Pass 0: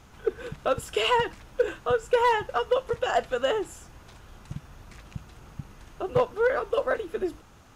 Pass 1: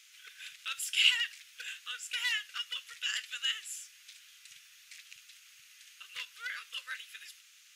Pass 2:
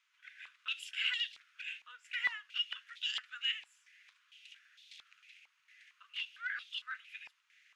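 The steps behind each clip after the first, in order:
inverse Chebyshev high-pass filter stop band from 840 Hz, stop band 50 dB; level +4.5 dB
band-pass on a step sequencer 4.4 Hz 890–3,500 Hz; level +4 dB

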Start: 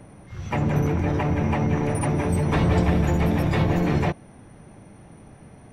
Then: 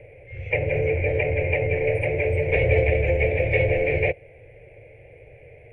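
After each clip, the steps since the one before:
drawn EQ curve 120 Hz 0 dB, 220 Hz −29 dB, 500 Hz +13 dB, 1,200 Hz −28 dB, 2,300 Hz +15 dB, 3,700 Hz −17 dB, 5,800 Hz −27 dB, 9,800 Hz −24 dB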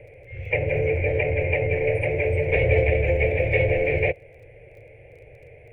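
surface crackle 19 per second −47 dBFS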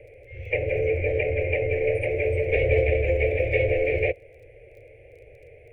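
phaser with its sweep stopped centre 440 Hz, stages 4

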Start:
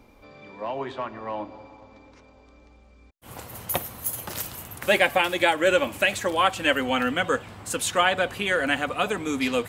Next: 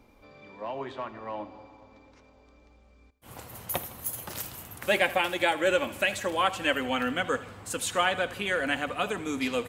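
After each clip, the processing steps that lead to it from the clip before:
repeating echo 80 ms, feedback 56%, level −17 dB
level −4.5 dB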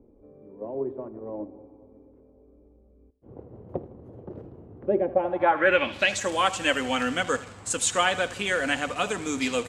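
in parallel at −11.5 dB: bit-depth reduction 6 bits, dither none
on the sum: low-pass filter sweep 410 Hz → 7,600 Hz, 0:05.10–0:06.22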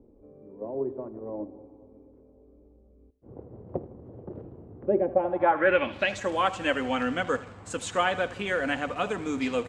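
low-pass filter 1,600 Hz 6 dB per octave

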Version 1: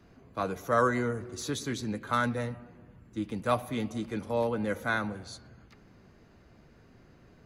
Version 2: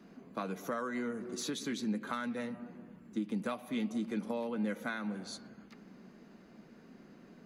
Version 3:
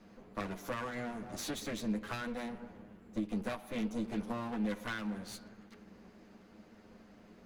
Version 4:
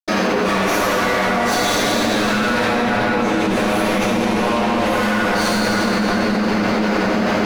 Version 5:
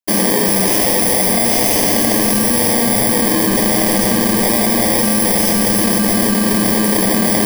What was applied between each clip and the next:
dynamic equaliser 2,700 Hz, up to +6 dB, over −46 dBFS, Q 1; downward compressor 6 to 1, threshold −36 dBFS, peak gain reduction 16 dB; low shelf with overshoot 140 Hz −12.5 dB, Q 3
lower of the sound and its delayed copy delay 9.6 ms
mid-hump overdrive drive 29 dB, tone 6,400 Hz, clips at −23.5 dBFS; convolution reverb RT60 6.3 s, pre-delay 77 ms; envelope flattener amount 100%; level +2 dB
samples in bit-reversed order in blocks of 32 samples; level +3.5 dB

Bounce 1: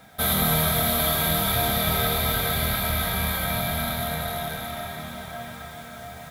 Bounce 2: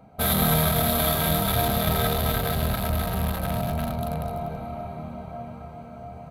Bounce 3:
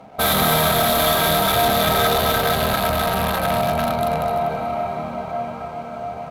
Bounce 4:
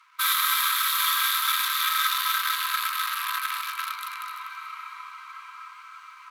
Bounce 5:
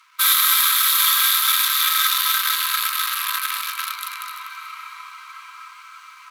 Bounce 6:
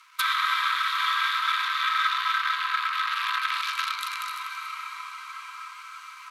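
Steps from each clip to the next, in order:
adaptive Wiener filter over 25 samples; level +2.5 dB
mid-hump overdrive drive 21 dB, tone 5,300 Hz, clips at −7 dBFS; slack as between gear wheels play −42.5 dBFS
Chebyshev high-pass filter 990 Hz, order 10; level −2.5 dB
high-shelf EQ 2,500 Hz +10 dB
treble cut that deepens with the level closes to 2,100 Hz, closed at −18 dBFS; hard clipping −13 dBFS, distortion −45 dB

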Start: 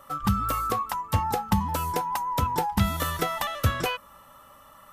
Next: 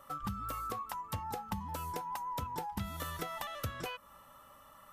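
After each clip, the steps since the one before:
downward compressor 3 to 1, threshold −32 dBFS, peak gain reduction 11.5 dB
level −6 dB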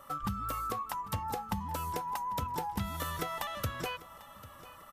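repeating echo 795 ms, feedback 37%, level −18 dB
level +3.5 dB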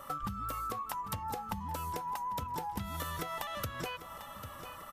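downward compressor, threshold −40 dBFS, peak gain reduction 10.5 dB
level +5 dB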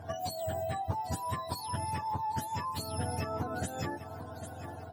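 frequency axis turned over on the octave scale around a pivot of 930 Hz
one half of a high-frequency compander decoder only
level +3.5 dB

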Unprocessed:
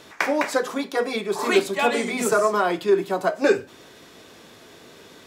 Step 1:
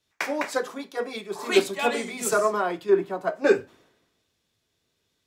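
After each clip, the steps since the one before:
multiband upward and downward expander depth 100%
level −4.5 dB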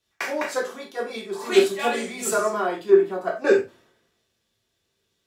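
convolution reverb, pre-delay 3 ms, DRR −0.5 dB
level −2.5 dB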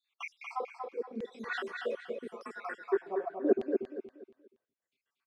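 time-frequency cells dropped at random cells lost 67%
auto-filter band-pass saw down 0.83 Hz 220–3,100 Hz
on a send: repeating echo 237 ms, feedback 31%, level −5 dB

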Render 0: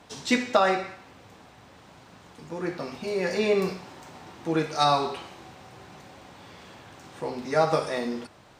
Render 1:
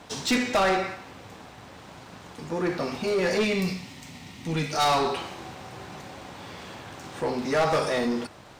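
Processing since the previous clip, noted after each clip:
gain on a spectral selection 0:03.44–0:04.73, 300–1,800 Hz −11 dB
soft clipping −20.5 dBFS, distortion −10 dB
leveller curve on the samples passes 1
level +2.5 dB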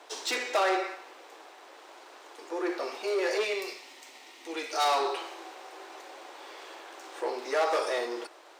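elliptic high-pass filter 340 Hz, stop band 50 dB
level −3 dB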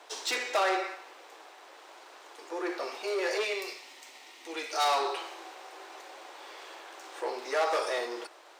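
low-shelf EQ 270 Hz −9 dB

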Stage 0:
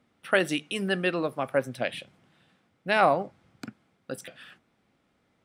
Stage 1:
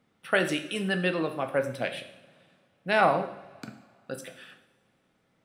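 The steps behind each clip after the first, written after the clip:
coupled-rooms reverb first 0.67 s, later 2.5 s, from −20 dB, DRR 6 dB
level −1.5 dB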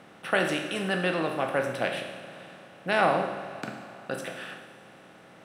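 compressor on every frequency bin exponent 0.6
level −3 dB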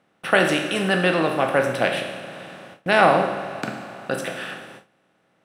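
noise gate with hold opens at −39 dBFS
level +7.5 dB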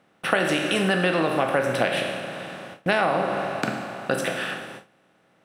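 downward compressor 6 to 1, threshold −21 dBFS, peak gain reduction 11 dB
level +3 dB

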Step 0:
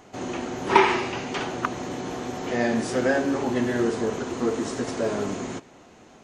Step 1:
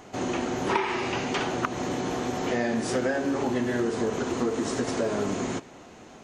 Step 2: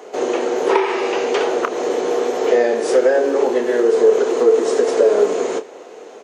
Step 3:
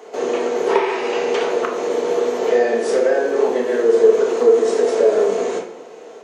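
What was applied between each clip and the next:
downward compressor 6 to 1, threshold −26 dBFS, peak gain reduction 14.5 dB; level +3 dB
high-pass with resonance 450 Hz, resonance Q 4.9; double-tracking delay 29 ms −12 dB; level +4.5 dB
convolution reverb RT60 0.65 s, pre-delay 4 ms, DRR 1.5 dB; level −3.5 dB

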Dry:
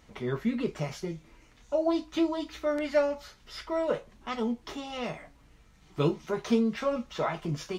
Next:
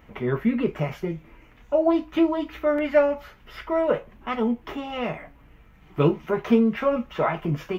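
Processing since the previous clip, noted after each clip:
flat-topped bell 6,100 Hz −15.5 dB
level +6.5 dB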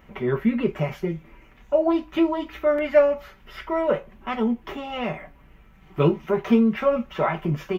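comb filter 5.2 ms, depth 36%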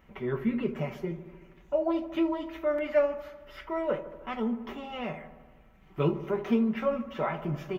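delay with a low-pass on its return 76 ms, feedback 70%, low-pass 1,400 Hz, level −12.5 dB
level −7.5 dB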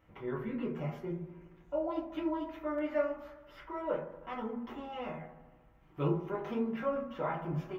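convolution reverb RT60 0.45 s, pre-delay 5 ms, DRR −2.5 dB
level −9 dB

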